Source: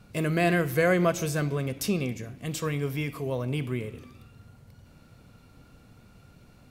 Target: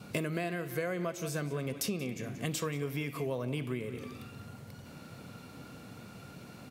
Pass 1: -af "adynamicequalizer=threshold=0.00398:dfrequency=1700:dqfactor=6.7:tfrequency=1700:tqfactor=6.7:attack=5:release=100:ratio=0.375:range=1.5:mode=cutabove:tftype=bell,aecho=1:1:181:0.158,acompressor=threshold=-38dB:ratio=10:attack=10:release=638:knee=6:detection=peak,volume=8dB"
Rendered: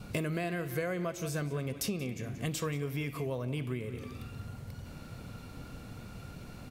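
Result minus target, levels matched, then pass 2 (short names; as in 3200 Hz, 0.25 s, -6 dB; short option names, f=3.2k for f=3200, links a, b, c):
125 Hz band +3.5 dB
-af "adynamicequalizer=threshold=0.00398:dfrequency=1700:dqfactor=6.7:tfrequency=1700:tqfactor=6.7:attack=5:release=100:ratio=0.375:range=1.5:mode=cutabove:tftype=bell,highpass=140,aecho=1:1:181:0.158,acompressor=threshold=-38dB:ratio=10:attack=10:release=638:knee=6:detection=peak,volume=8dB"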